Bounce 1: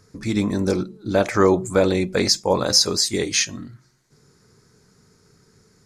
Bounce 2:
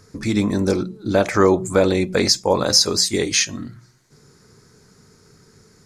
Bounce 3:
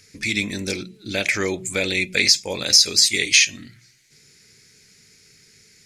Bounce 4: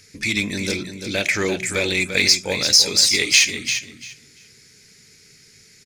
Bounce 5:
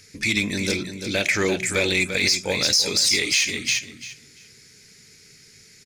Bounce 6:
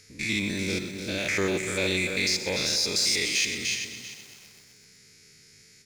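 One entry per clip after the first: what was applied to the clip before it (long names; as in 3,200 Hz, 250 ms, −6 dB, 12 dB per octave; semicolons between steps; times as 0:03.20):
mains-hum notches 60/120/180 Hz; in parallel at −2 dB: downward compressor, threshold −27 dBFS, peak gain reduction 15 dB
high shelf with overshoot 1,600 Hz +12.5 dB, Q 3; boost into a limiter −7.5 dB; level −1.5 dB
in parallel at −12 dB: wave folding −19.5 dBFS; on the sum: repeating echo 343 ms, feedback 18%, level −8.5 dB
boost into a limiter +8.5 dB; level −8.5 dB
spectrum averaged block by block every 100 ms; feedback echo at a low word length 127 ms, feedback 80%, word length 7 bits, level −13.5 dB; level −3 dB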